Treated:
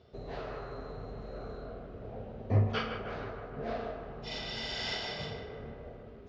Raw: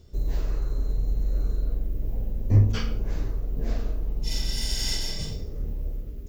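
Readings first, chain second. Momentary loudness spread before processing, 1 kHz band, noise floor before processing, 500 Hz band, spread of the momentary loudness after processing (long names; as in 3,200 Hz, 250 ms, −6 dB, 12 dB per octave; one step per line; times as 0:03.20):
12 LU, +6.5 dB, −36 dBFS, +2.5 dB, 14 LU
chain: loudspeaker in its box 160–3,900 Hz, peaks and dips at 180 Hz −6 dB, 310 Hz −10 dB, 440 Hz +3 dB, 700 Hz +9 dB, 1,300 Hz +6 dB
feedback echo with a band-pass in the loop 154 ms, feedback 69%, band-pass 1,300 Hz, level −7 dB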